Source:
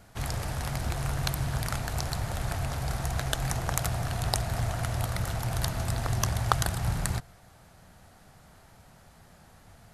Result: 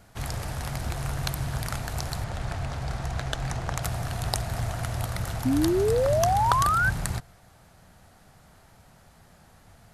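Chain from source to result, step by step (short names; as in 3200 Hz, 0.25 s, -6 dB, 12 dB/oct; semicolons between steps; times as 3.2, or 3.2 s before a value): 2.24–3.83 air absorption 59 m; 5.45–6.9 painted sound rise 250–1600 Hz -23 dBFS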